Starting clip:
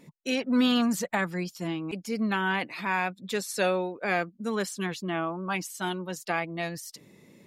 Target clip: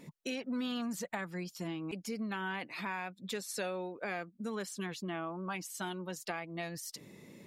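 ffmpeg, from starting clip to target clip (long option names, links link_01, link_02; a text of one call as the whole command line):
ffmpeg -i in.wav -af "acompressor=threshold=-40dB:ratio=3,volume=1dB" out.wav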